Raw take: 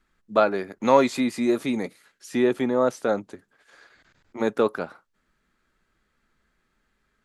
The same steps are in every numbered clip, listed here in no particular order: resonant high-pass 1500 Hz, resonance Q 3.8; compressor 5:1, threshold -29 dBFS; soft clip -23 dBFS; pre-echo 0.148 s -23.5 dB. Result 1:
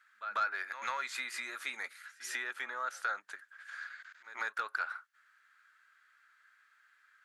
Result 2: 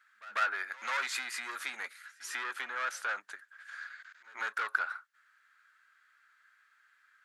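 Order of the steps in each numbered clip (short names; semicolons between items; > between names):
pre-echo > compressor > resonant high-pass > soft clip; soft clip > pre-echo > compressor > resonant high-pass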